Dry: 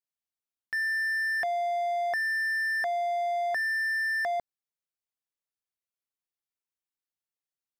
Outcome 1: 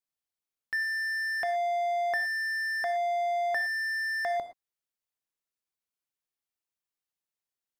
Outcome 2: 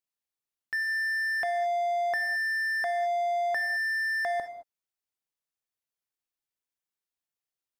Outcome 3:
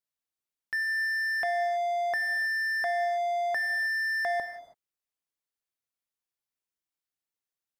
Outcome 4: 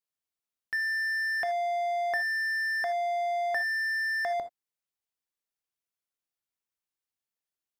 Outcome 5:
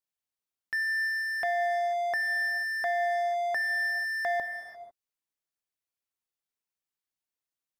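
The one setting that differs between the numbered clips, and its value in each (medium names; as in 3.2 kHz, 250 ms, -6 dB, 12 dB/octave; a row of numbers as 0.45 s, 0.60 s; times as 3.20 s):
gated-style reverb, gate: 140 ms, 240 ms, 350 ms, 100 ms, 520 ms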